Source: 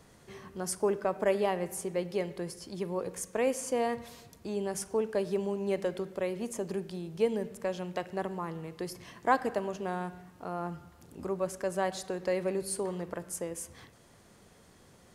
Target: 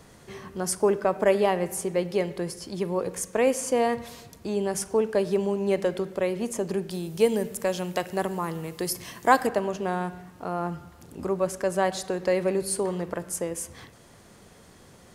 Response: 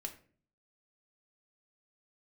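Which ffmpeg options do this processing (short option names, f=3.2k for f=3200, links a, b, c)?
-filter_complex "[0:a]asettb=1/sr,asplit=3[a][b][c];[a]atrim=end=6.904[d];[b]atrim=start=6.9:end=9.47,asetpts=PTS-STARTPTS,afade=t=in:d=0.004:c=qsin,afade=t=out:st=2.566:d=0.004:c=qsin,aemphasis=mode=production:type=50kf[e];[c]atrim=start=9.466[f];[d][e]acrossfade=d=0.004:c1=hsin:c2=qsin[g];[g][f]acrossfade=d=0.004:c1=qsin:c2=hsin,volume=6.5dB"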